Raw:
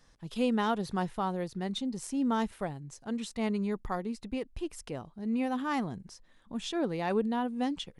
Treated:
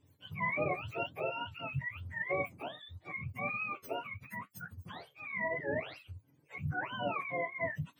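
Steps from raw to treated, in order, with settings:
frequency axis turned over on the octave scale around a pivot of 710 Hz
flanger 0.88 Hz, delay 6.5 ms, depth 7.7 ms, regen −60%
dynamic equaliser 630 Hz, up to +6 dB, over −54 dBFS, Q 3.7

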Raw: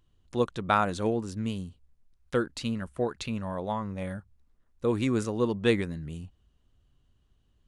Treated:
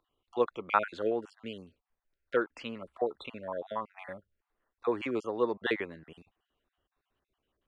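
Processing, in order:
time-frequency cells dropped at random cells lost 34%
three-way crossover with the lows and the highs turned down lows −21 dB, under 340 Hz, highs −23 dB, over 3,300 Hz
level +1.5 dB

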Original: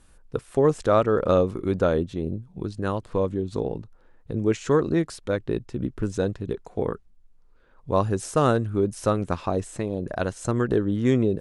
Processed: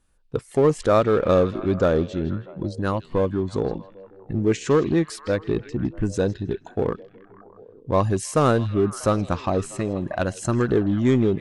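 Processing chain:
noise reduction from a noise print of the clip's start 15 dB
in parallel at −4.5 dB: gain into a clipping stage and back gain 24 dB
on the sum: echo through a band-pass that steps 160 ms, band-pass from 3,700 Hz, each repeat −0.7 octaves, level −9 dB

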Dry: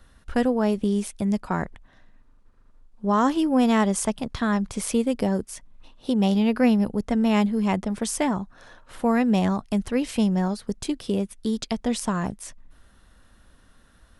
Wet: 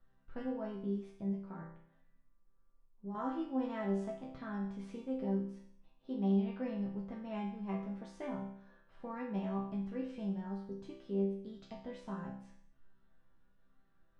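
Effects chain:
0:01.29–0:03.15: downward compressor 3 to 1, threshold −28 dBFS, peak gain reduction 8.5 dB
head-to-tape spacing loss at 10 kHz 30 dB
resonators tuned to a chord C3 major, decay 0.64 s
level +4 dB

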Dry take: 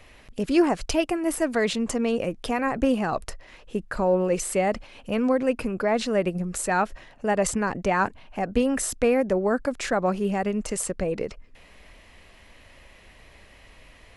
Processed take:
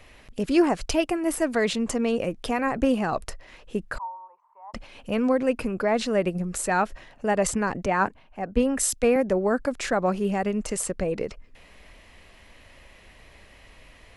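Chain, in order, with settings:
0:03.98–0:04.74: flat-topped band-pass 960 Hz, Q 6.5
0:07.86–0:09.16: multiband upward and downward expander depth 70%

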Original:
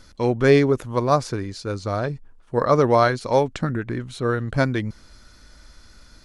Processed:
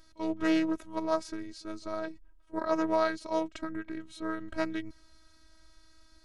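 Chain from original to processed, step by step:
echo ahead of the sound 39 ms −22 dB
phases set to zero 320 Hz
highs frequency-modulated by the lows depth 0.23 ms
level −8.5 dB

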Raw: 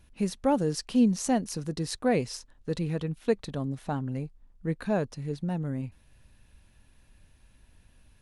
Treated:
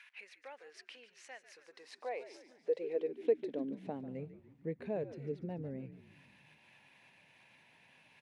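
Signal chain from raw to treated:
dynamic equaliser 1,200 Hz, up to +4 dB, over −45 dBFS, Q 1
downward compressor 2 to 1, threshold −55 dBFS, peak gain reduction 20 dB
high shelf with overshoot 1,700 Hz +8.5 dB, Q 3
envelope filter 480–1,400 Hz, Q 2.3, down, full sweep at −44.5 dBFS
echo with shifted repeats 145 ms, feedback 58%, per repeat −83 Hz, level −13 dB
high-pass filter sweep 1,500 Hz → 140 Hz, 0:01.47–0:04.25
level +11 dB

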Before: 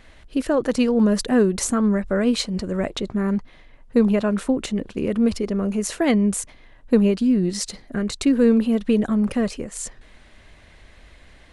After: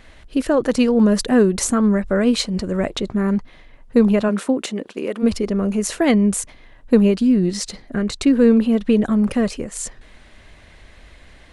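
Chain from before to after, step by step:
0:04.28–0:05.22: high-pass filter 160 Hz → 450 Hz 12 dB per octave
0:07.50–0:09.05: high-shelf EQ 8,400 Hz −7 dB
level +3 dB

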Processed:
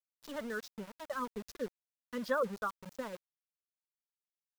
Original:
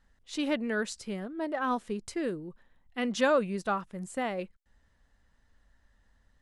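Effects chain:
hearing-aid frequency compression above 3,000 Hz 1.5 to 1
reverb reduction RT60 1.8 s
harmonic and percussive parts rebalanced harmonic −4 dB
phaser with its sweep stopped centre 490 Hz, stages 8
tempo change 1.4×
centre clipping without the shift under −43 dBFS
level −1.5 dB

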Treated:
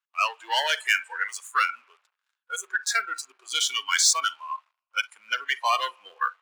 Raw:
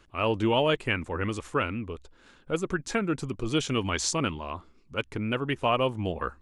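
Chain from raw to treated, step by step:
spring reverb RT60 1.2 s, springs 40/56 ms, chirp 35 ms, DRR 14.5 dB
leveller curve on the samples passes 3
noise reduction from a noise print of the clip's start 21 dB
high-pass filter 940 Hz 24 dB per octave

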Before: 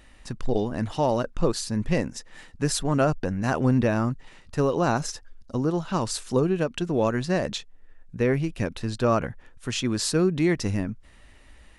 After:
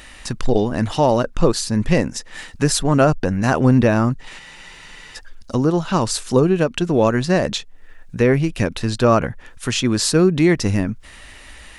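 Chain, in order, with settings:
frozen spectrum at 0:04.42, 0.74 s
one half of a high-frequency compander encoder only
level +7.5 dB

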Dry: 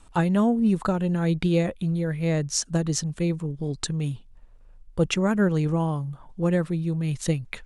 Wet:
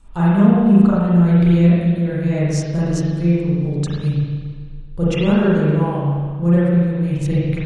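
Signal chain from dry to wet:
low-shelf EQ 220 Hz +8.5 dB
spring reverb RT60 1.7 s, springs 35/40 ms, chirp 75 ms, DRR −9.5 dB
level −6 dB

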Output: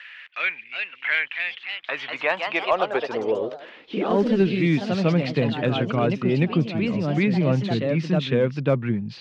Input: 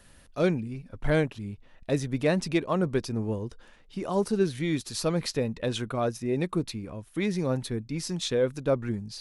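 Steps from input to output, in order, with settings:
transistor ladder low-pass 3,200 Hz, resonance 45%
high-pass filter sweep 2,000 Hz → 140 Hz, 0:01.15–0:04.98
in parallel at −5 dB: asymmetric clip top −25 dBFS
on the sum: delay with pitch and tempo change per echo 400 ms, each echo +2 semitones, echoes 3, each echo −6 dB
multiband upward and downward compressor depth 40%
level +8 dB

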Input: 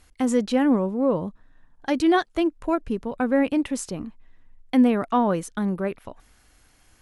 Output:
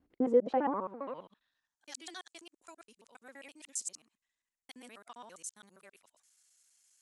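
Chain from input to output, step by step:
reversed piece by piece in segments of 67 ms
band-pass filter sweep 300 Hz → 7,500 Hz, 0:00.07–0:01.81

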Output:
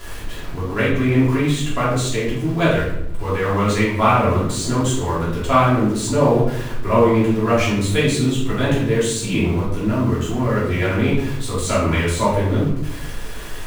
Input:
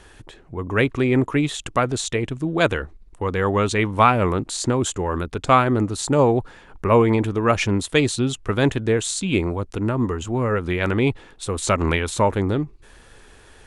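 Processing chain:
converter with a step at zero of −29.5 dBFS
rectangular room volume 190 cubic metres, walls mixed, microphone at 3 metres
level −9.5 dB

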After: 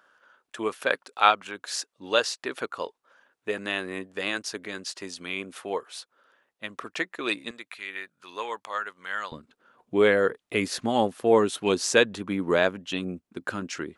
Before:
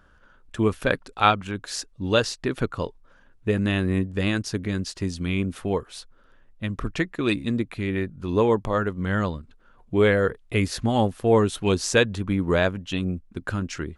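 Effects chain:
high-pass filter 520 Hz 12 dB per octave, from 0:07.51 1,200 Hz, from 0:09.32 260 Hz

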